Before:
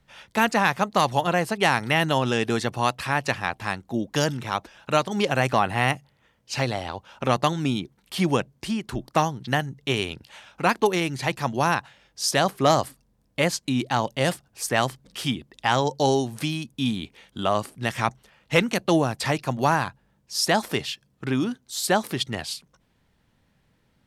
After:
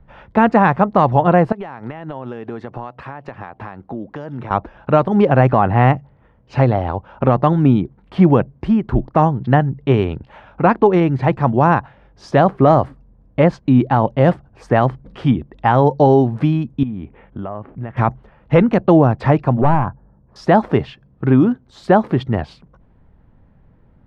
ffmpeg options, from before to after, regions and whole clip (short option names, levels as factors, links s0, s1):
-filter_complex "[0:a]asettb=1/sr,asplit=3[s0][s1][s2];[s0]atrim=end=1.524[s3];[s1]atrim=start=1.52:end=4.51,asetpts=PTS-STARTPTS,afade=t=in:d=0.004:c=qsin,afade=t=out:st=2.986:d=0.004:c=qsin,highpass=f=240:p=1,acompressor=threshold=0.0178:ratio=8:attack=3.2:release=140:knee=1:detection=peak[s4];[s2]atrim=start=4.506[s5];[s3][s4]acrossfade=d=0.004:c1=hsin:c2=qsin[s6];[s6][s5]acrossfade=d=0.004:c1=qsin:c2=hsin,asettb=1/sr,asplit=3[s7][s8][s9];[s7]atrim=end=16.834[s10];[s8]atrim=start=16.83:end=17.97,asetpts=PTS-STARTPTS,afade=t=in:d=0.004:c=qsin,afade=t=out:st=1.136:d=0.004:c=qsin,lowpass=f=2800:w=0.5412,lowpass=f=2800:w=1.3066,acompressor=threshold=0.0112:ratio=3:attack=3.2:release=140:knee=1:detection=peak[s11];[s9]atrim=start=17.966[s12];[s10][s11]acrossfade=d=0.004:c1=hsin:c2=qsin[s13];[s13][s12]acrossfade=d=0.004:c1=qsin:c2=hsin,asettb=1/sr,asplit=3[s14][s15][s16];[s14]atrim=end=19.614[s17];[s15]atrim=start=19.61:end=20.36,asetpts=PTS-STARTPTS,afade=t=in:d=0.004:c=qsin,afade=t=out:st=0.746:d=0.004:c=qsin,lowpass=f=1500:w=0.5412,lowpass=f=1500:w=1.3066,asoftclip=type=hard:threshold=0.0944[s18];[s16]atrim=start=20.356[s19];[s17][s18]acrossfade=d=0.004:c1=hsin:c2=qsin[s20];[s20][s19]acrossfade=d=0.004:c1=qsin:c2=hsin,lowpass=1100,lowshelf=f=79:g=11.5,alimiter=level_in=3.98:limit=0.891:release=50:level=0:latency=1,volume=0.891"